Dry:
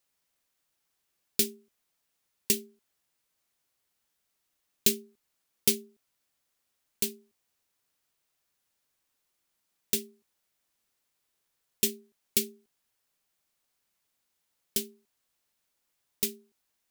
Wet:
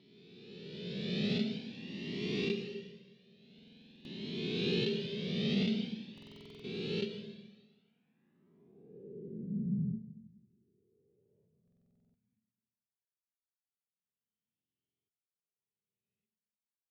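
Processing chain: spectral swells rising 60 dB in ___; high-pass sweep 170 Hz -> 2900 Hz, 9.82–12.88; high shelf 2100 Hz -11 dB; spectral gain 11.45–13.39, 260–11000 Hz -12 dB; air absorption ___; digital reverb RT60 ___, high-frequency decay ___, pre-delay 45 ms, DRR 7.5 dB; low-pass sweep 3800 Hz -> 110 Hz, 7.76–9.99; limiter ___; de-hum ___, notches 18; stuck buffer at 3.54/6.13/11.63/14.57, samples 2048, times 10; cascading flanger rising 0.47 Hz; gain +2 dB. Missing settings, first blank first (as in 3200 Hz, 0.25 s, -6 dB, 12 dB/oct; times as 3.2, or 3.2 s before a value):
2.47 s, 230 m, 1.4 s, 1×, -19.5 dBFS, 62.6 Hz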